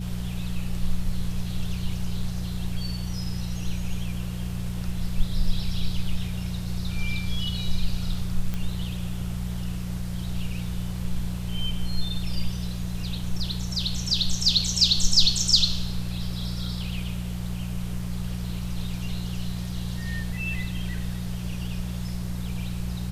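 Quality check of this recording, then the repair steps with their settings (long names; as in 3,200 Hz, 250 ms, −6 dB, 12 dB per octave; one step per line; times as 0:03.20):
mains hum 60 Hz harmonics 3 −31 dBFS
0:08.54: click −16 dBFS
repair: click removal
hum removal 60 Hz, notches 3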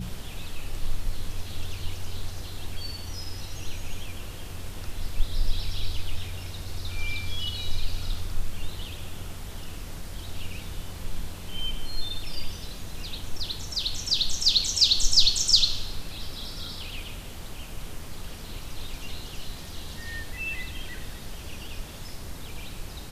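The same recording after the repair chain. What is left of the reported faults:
none of them is left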